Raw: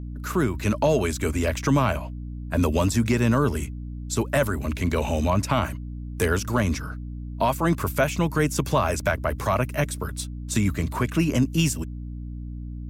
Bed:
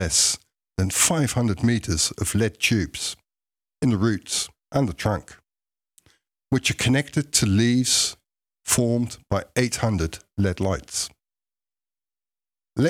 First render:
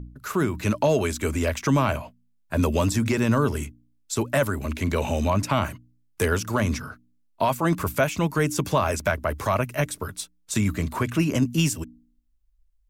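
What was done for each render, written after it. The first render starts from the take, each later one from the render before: de-hum 60 Hz, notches 5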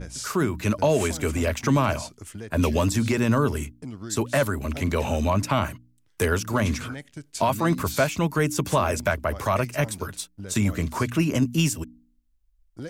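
add bed -16.5 dB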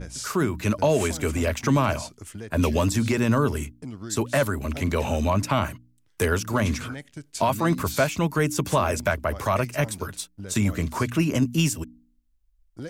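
no audible change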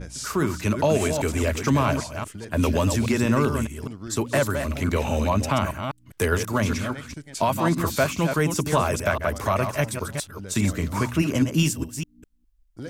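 chunks repeated in reverse 204 ms, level -7 dB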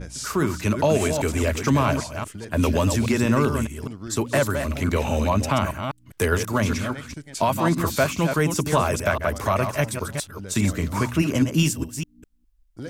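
trim +1 dB

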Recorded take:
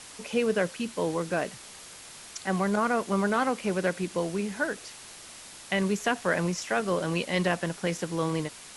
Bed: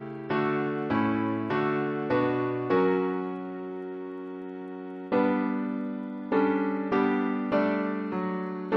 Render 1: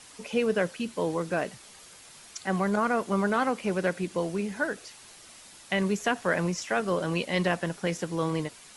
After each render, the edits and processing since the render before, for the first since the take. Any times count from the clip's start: noise reduction 6 dB, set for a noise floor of -47 dBFS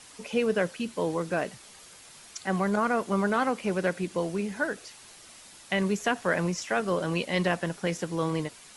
no audible change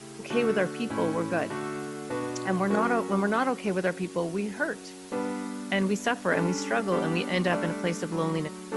add bed -7 dB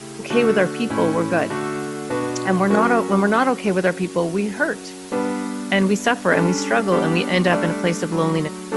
trim +8.5 dB

